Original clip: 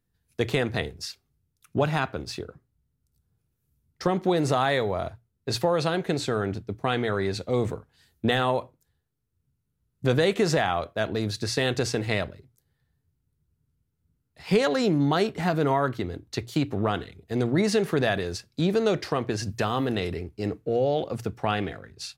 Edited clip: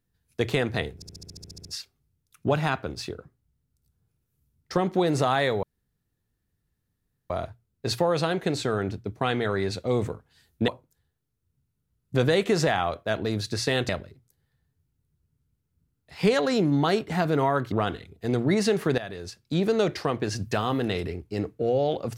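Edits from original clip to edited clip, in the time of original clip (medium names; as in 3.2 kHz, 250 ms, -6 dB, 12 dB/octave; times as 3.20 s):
0.95 s: stutter 0.07 s, 11 plays
4.93 s: insert room tone 1.67 s
8.31–8.58 s: delete
11.79–12.17 s: delete
16.00–16.79 s: delete
18.05–18.72 s: fade in, from -14.5 dB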